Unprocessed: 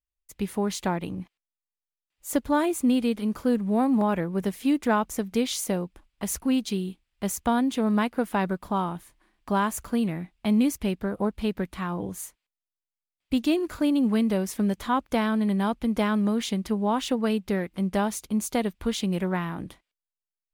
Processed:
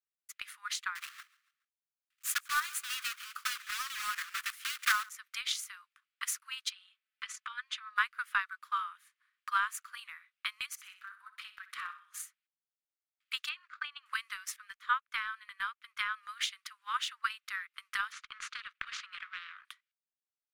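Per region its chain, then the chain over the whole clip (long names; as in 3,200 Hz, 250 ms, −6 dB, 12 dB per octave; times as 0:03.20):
0:00.95–0:05.09: one scale factor per block 3 bits + high-shelf EQ 7,800 Hz +6.5 dB + repeating echo 140 ms, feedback 40%, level −18 dB
0:06.70–0:07.96: comb filter 4.6 ms, depth 69% + downward compressor 2.5 to 1, threshold −22 dBFS + high-frequency loss of the air 91 metres
0:10.66–0:12.22: downward compressor 4 to 1, threshold −29 dBFS + flutter between parallel walls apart 10.7 metres, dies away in 0.5 s
0:13.49–0:14.06: low-pass filter 3,400 Hz + downward expander −34 dBFS
0:14.56–0:16.23: bass and treble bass +5 dB, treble −5 dB + expander for the loud parts, over −40 dBFS
0:18.12–0:19.65: gain on one half-wave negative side −7 dB + head-to-tape spacing loss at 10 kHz 31 dB + every bin compressed towards the loudest bin 10 to 1
whole clip: Butterworth high-pass 1,200 Hz 72 dB per octave; transient designer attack +10 dB, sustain −3 dB; spectral tilt −3.5 dB per octave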